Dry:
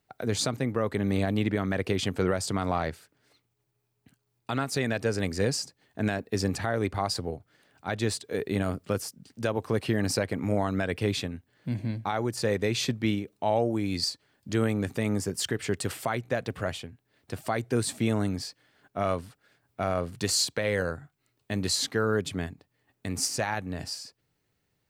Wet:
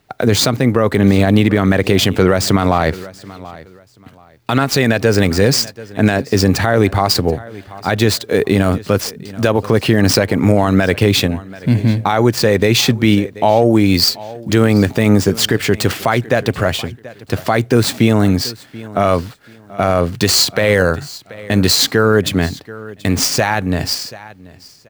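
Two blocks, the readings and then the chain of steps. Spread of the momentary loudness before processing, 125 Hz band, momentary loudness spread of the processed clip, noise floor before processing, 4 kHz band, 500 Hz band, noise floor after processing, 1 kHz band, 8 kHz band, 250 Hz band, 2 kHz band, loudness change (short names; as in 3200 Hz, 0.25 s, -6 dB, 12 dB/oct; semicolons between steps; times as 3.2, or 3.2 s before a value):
10 LU, +15.5 dB, 12 LU, -77 dBFS, +15.5 dB, +14.5 dB, -44 dBFS, +14.0 dB, +12.5 dB, +15.5 dB, +15.0 dB, +15.0 dB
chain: median filter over 5 samples; high shelf 5500 Hz +4.5 dB; feedback echo 0.732 s, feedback 24%, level -22 dB; maximiser +18.5 dB; gain -1 dB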